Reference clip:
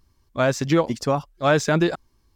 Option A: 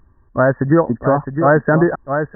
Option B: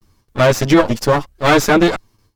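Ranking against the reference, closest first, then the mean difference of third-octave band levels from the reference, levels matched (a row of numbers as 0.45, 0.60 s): B, A; 5.0, 9.0 dB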